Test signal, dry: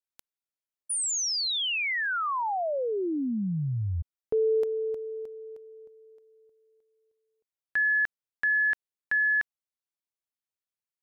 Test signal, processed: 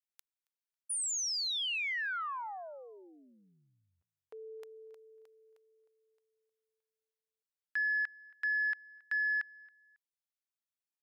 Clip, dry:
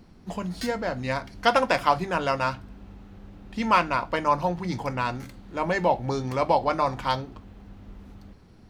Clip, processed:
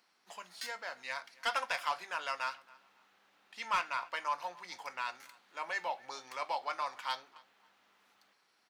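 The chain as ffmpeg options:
-filter_complex "[0:a]highpass=1200,asoftclip=type=tanh:threshold=0.133,asplit=2[s0][s1];[s1]adelay=274,lowpass=f=4300:p=1,volume=0.0708,asplit=2[s2][s3];[s3]adelay=274,lowpass=f=4300:p=1,volume=0.29[s4];[s2][s4]amix=inputs=2:normalize=0[s5];[s0][s5]amix=inputs=2:normalize=0,volume=0.531"

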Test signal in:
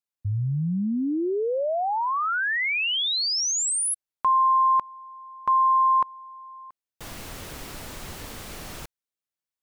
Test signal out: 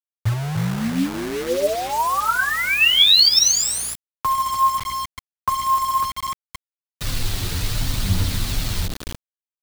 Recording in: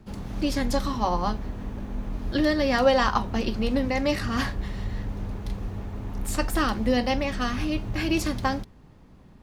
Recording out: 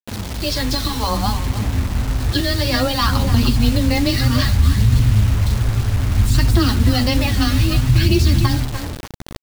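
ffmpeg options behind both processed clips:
-filter_complex "[0:a]acompressor=threshold=0.0631:ratio=3:attack=65:release=114:knee=1:detection=rms,equalizer=f=4100:w=1.5:g=11.5,asplit=2[s0][s1];[s1]adelay=12,volume=0.251[s2];[s0][s2]amix=inputs=2:normalize=0,acrossover=split=7500[s3][s4];[s4]acompressor=threshold=0.0112:ratio=4:attack=1:release=60[s5];[s3][s5]amix=inputs=2:normalize=0,asplit=2[s6][s7];[s7]adelay=297,lowpass=f=3200:p=1,volume=0.335,asplit=2[s8][s9];[s9]adelay=297,lowpass=f=3200:p=1,volume=0.23,asplit=2[s10][s11];[s11]adelay=297,lowpass=f=3200:p=1,volume=0.23[s12];[s8][s10][s12]amix=inputs=3:normalize=0[s13];[s6][s13]amix=inputs=2:normalize=0,afreqshift=14,flanger=delay=7.5:depth=3.7:regen=27:speed=1.4:shape=sinusoidal,asubboost=boost=5:cutoff=220,aphaser=in_gain=1:out_gain=1:delay=2.8:decay=0.37:speed=0.61:type=triangular,aeval=exprs='val(0)+0.00251*(sin(2*PI*60*n/s)+sin(2*PI*2*60*n/s)/2+sin(2*PI*3*60*n/s)/3+sin(2*PI*4*60*n/s)/4+sin(2*PI*5*60*n/s)/5)':c=same,acrusher=bits=5:mix=0:aa=0.000001,alimiter=level_in=3.55:limit=0.891:release=50:level=0:latency=1,volume=0.631"

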